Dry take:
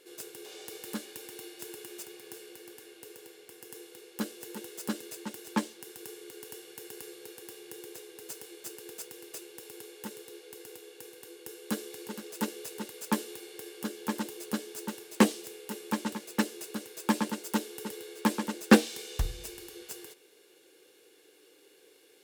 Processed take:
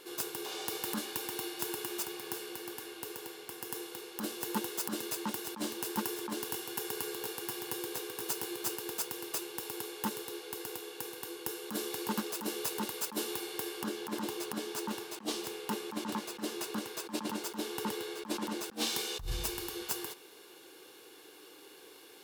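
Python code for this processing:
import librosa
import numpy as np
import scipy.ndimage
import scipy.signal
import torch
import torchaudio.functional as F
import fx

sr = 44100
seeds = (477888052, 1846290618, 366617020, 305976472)

y = fx.echo_single(x, sr, ms=717, db=-5.0, at=(5.63, 8.75), fade=0.02)
y = fx.high_shelf(y, sr, hz=8400.0, db=-8.0, at=(13.81, 18.66))
y = fx.graphic_eq(y, sr, hz=(500, 1000, 2000, 8000), db=(-8, 8, -5, -5))
y = fx.over_compress(y, sr, threshold_db=-39.0, ratio=-1.0)
y = F.gain(torch.from_numpy(y), 3.5).numpy()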